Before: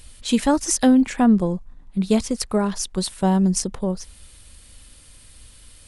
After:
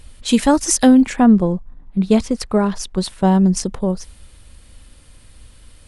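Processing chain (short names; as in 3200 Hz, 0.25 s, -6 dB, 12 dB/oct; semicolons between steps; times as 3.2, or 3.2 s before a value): 1.15–3.64 high shelf 4700 Hz -> 7400 Hz -10 dB; mismatched tape noise reduction decoder only; gain +4.5 dB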